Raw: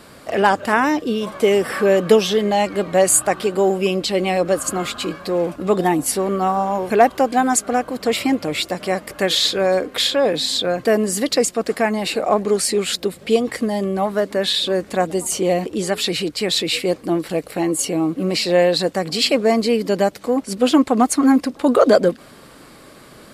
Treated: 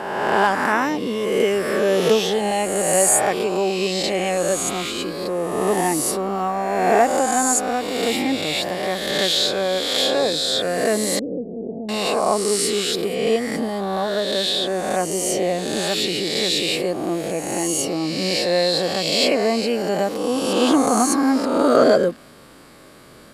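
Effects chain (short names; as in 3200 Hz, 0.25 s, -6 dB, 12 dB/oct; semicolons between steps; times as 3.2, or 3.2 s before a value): spectral swells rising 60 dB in 1.58 s; 11.19–11.89 Gaussian blur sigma 21 samples; gain -5.5 dB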